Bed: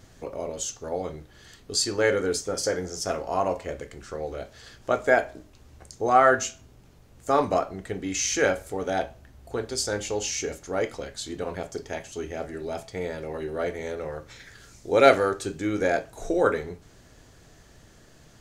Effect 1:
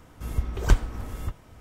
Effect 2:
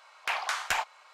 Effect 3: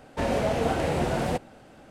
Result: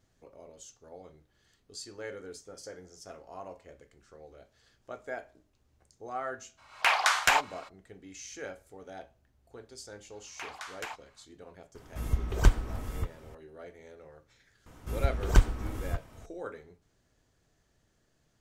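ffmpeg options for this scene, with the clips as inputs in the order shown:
-filter_complex "[2:a]asplit=2[s0][s1];[1:a]asplit=2[s2][s3];[0:a]volume=0.119[s4];[s0]dynaudnorm=f=110:g=3:m=3.16,atrim=end=1.13,asetpts=PTS-STARTPTS,volume=0.668,afade=t=in:d=0.02,afade=t=out:st=1.11:d=0.02,adelay=6570[s5];[s1]atrim=end=1.13,asetpts=PTS-STARTPTS,volume=0.266,afade=t=in:d=0.004:c=hsin,afade=t=out:st=1.126:d=0.004:c=hsin,adelay=10120[s6];[s2]atrim=end=1.6,asetpts=PTS-STARTPTS,volume=0.794,afade=t=in:d=0.004:c=hsin,afade=t=out:st=1.596:d=0.004:c=hsin,adelay=11750[s7];[s3]atrim=end=1.6,asetpts=PTS-STARTPTS,volume=0.841,afade=t=in:d=0.004:c=hsin,afade=t=out:st=1.596:d=0.004:c=hsin,adelay=14660[s8];[s4][s5][s6][s7][s8]amix=inputs=5:normalize=0"

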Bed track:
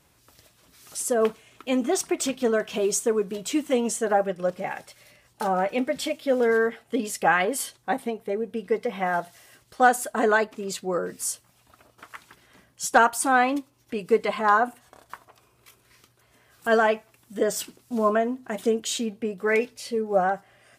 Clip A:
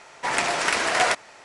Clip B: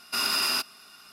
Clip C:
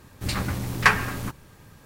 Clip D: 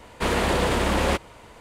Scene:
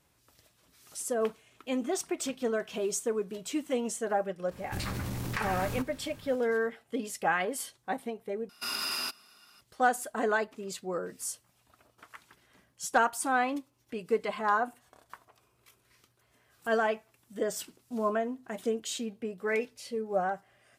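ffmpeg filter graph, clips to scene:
-filter_complex "[0:a]volume=0.422[s0];[3:a]acompressor=threshold=0.0224:ratio=6:attack=18:release=22:knee=1:detection=rms[s1];[s0]asplit=2[s2][s3];[s2]atrim=end=8.494[s4];[2:a]atrim=end=1.12,asetpts=PTS-STARTPTS,volume=0.422[s5];[s3]atrim=start=9.606[s6];[s1]atrim=end=1.85,asetpts=PTS-STARTPTS,volume=0.794,afade=t=in:d=0.004:c=hsin,afade=t=out:st=1.846:d=0.004:c=hsin,adelay=4510[s7];[s4][s5]acrossfade=d=0.004:c1=hsin:c2=hsin[s8];[s8][s6]acrossfade=d=0.004:c1=hsin:c2=hsin[s9];[s9][s7]amix=inputs=2:normalize=0"

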